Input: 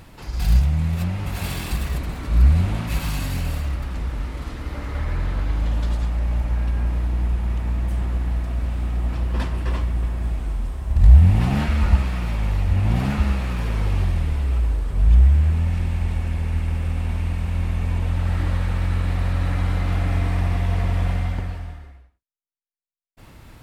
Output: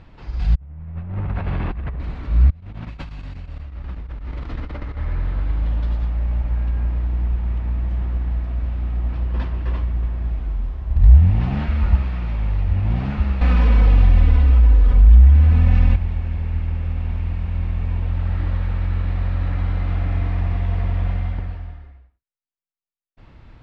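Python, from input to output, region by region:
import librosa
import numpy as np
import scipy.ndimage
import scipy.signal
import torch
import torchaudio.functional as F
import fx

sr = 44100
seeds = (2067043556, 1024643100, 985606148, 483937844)

y = fx.chain(x, sr, fx.zero_step(step_db=-28.5),
    fx.lowpass(hz=1700.0, slope=12),
    fx.over_compress(threshold_db=-25.0, ratio=-0.5), at=(0.55, 2.0))
y = fx.chain(y, sr, fx.over_compress(threshold_db=-31.0, ratio=-1.0),
    fx.chopper(hz=8.2, depth_pct=65, duty_pct=85), at=(2.5, 4.97))
y = fx.chain(y, sr, fx.comb(ms=4.0, depth=0.94),
    fx.env_flatten(amount_pct=50), at=(13.41, 15.96))
y = scipy.signal.sosfilt(scipy.signal.bessel(4, 3300.0, 'lowpass', norm='mag', fs=sr, output='sos'), y)
y = fx.low_shelf(y, sr, hz=76.0, db=7.0)
y = F.gain(torch.from_numpy(y), -3.5).numpy()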